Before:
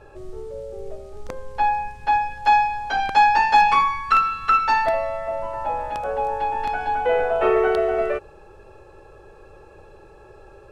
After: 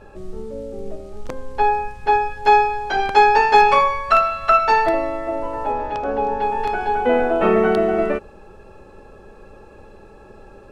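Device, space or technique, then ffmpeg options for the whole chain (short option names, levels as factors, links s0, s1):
octave pedal: -filter_complex "[0:a]asettb=1/sr,asplit=3[s0][s1][s2];[s0]atrim=end=5.724[s3];[s1]atrim=start=5.72:end=6.42,asetpts=PTS-STARTPTS,afade=t=in:d=0.004:c=qsin,afade=t=out:st=0.696:d=0.004:c=qsin,lowpass=f=6200:w=0.5412,lowpass=f=6200:w=1.3066[s4];[s2]atrim=start=6.416[s5];[s3][s4]acrossfade=d=0.004:c1=hsin:c2=qsin[s6];[s6][s5]acrossfade=d=0.004:c1=qsin:c2=hsin,asplit=2[s7][s8];[s8]asetrate=22050,aresample=44100,atempo=2,volume=0.447[s9];[s7][s9]amix=inputs=2:normalize=0,volume=1.26"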